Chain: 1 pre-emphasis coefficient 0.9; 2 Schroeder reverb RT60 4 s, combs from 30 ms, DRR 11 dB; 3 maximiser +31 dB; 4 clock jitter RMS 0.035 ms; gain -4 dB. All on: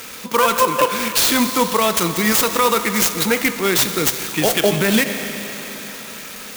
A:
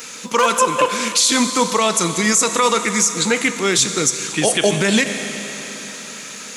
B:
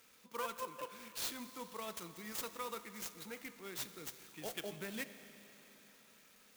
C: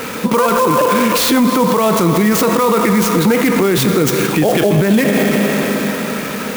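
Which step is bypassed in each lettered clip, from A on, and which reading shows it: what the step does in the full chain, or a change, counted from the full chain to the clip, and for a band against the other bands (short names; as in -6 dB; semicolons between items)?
4, 8 kHz band +4.5 dB; 3, crest factor change +5.5 dB; 1, 125 Hz band +8.0 dB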